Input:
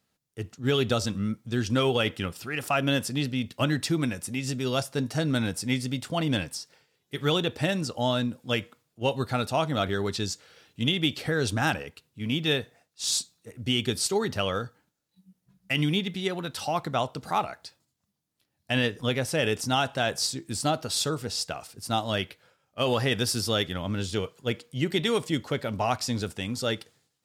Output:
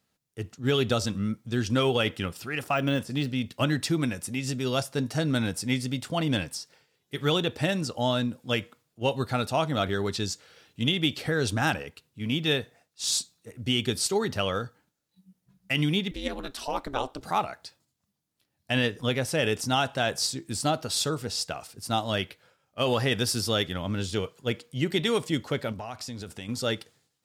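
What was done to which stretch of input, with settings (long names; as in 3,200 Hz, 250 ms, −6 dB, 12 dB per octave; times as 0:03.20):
0:02.62–0:03.51: de-essing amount 90%
0:16.11–0:17.21: ring modulation 140 Hz
0:25.72–0:26.49: downward compressor 4 to 1, threshold −35 dBFS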